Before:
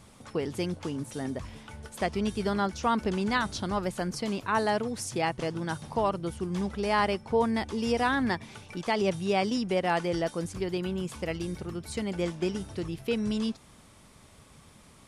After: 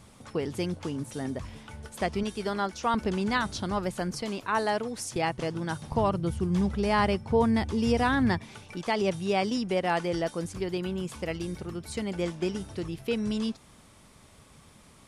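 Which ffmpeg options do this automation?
-af "asetnsamples=n=441:p=0,asendcmd='2.23 equalizer g -10;2.94 equalizer g 1;4.22 equalizer g -7;5.16 equalizer g 1.5;5.92 equalizer g 10.5;8.38 equalizer g -0.5',equalizer=f=96:t=o:w=2:g=1.5"

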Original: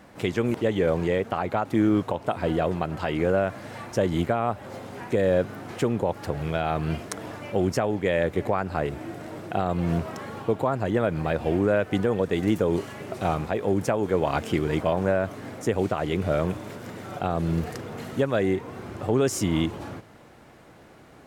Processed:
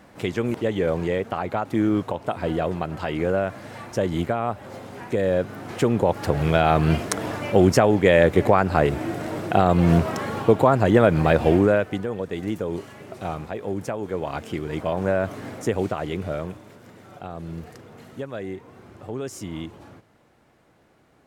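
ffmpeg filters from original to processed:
-af "volume=15.5dB,afade=t=in:st=5.44:d=1.09:silence=0.398107,afade=t=out:st=11.42:d=0.57:silence=0.237137,afade=t=in:st=14.68:d=0.68:silence=0.421697,afade=t=out:st=15.36:d=1.28:silence=0.251189"

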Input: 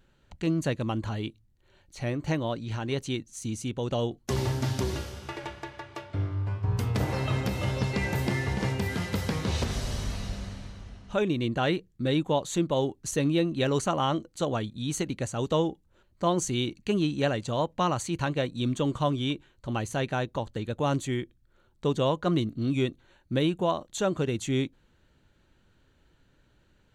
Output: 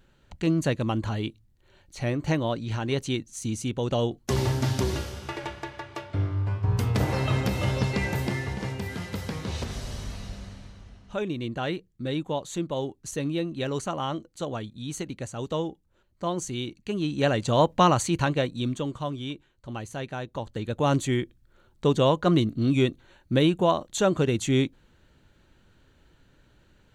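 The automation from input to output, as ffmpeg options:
-af "volume=24dB,afade=t=out:st=7.76:d=0.84:silence=0.473151,afade=t=in:st=16.97:d=0.71:silence=0.266073,afade=t=out:st=17.68:d=1.25:silence=0.223872,afade=t=in:st=20.22:d=0.77:silence=0.334965"

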